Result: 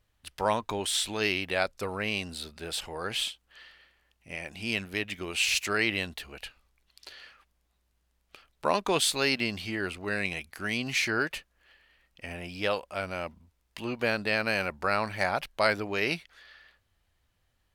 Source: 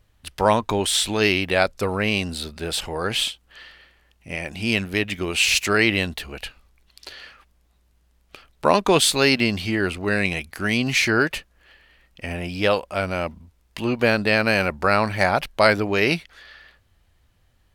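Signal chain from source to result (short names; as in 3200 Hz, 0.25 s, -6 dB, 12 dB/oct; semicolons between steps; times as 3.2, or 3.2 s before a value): low shelf 440 Hz -5 dB; gain -7.5 dB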